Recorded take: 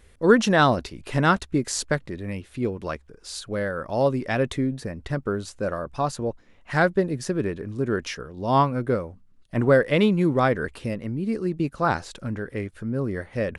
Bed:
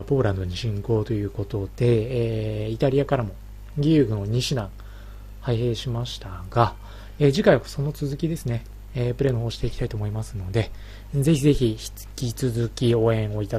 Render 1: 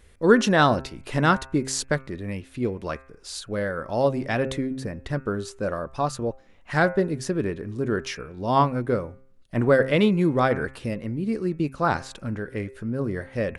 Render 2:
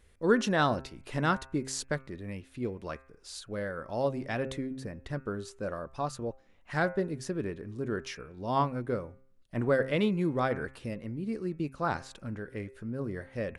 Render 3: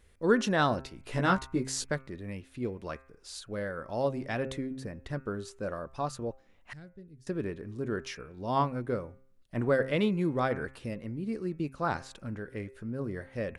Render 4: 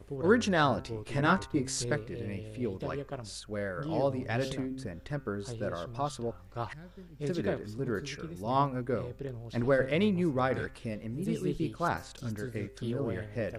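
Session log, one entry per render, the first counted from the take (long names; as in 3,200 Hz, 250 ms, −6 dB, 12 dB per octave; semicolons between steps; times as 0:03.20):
hum removal 132.6 Hz, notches 20
level −8 dB
0:01.04–0:01.92: double-tracking delay 16 ms −3.5 dB; 0:06.73–0:07.27: guitar amp tone stack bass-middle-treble 10-0-1
mix in bed −17.5 dB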